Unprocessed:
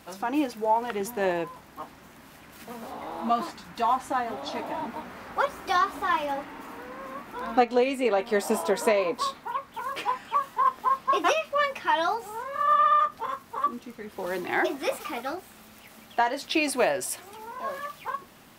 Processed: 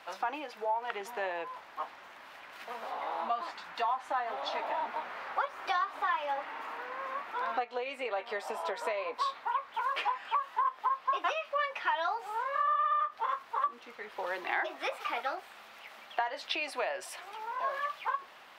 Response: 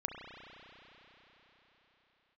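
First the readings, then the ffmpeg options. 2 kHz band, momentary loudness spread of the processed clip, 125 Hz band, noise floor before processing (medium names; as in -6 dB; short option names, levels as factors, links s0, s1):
-4.5 dB, 11 LU, no reading, -51 dBFS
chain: -filter_complex "[0:a]acompressor=threshold=0.0316:ratio=6,acrossover=split=530 4300:gain=0.0631 1 0.141[s0][s1][s2];[s0][s1][s2]amix=inputs=3:normalize=0,volume=1.41"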